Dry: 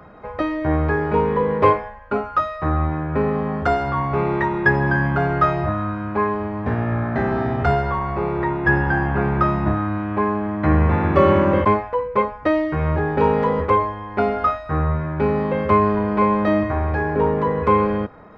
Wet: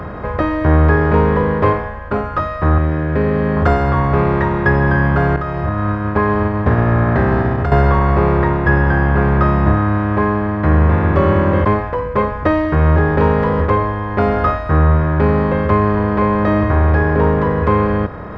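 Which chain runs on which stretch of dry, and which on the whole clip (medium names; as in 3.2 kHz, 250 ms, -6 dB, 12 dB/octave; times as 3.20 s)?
2.78–3.57 s: high-pass 140 Hz 6 dB/octave + high-order bell 1 kHz -11 dB 1.1 oct
5.36–7.72 s: expander -17 dBFS + compression, threshold -29 dBFS
whole clip: spectral levelling over time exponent 0.6; bass shelf 180 Hz +10 dB; level rider; trim -1 dB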